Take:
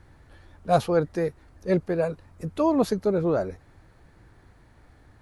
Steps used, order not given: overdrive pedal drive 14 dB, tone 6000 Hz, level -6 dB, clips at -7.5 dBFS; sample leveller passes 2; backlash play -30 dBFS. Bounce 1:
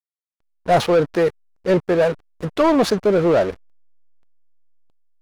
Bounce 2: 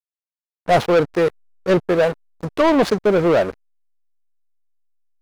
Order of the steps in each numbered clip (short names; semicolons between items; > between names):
sample leveller > backlash > overdrive pedal; backlash > overdrive pedal > sample leveller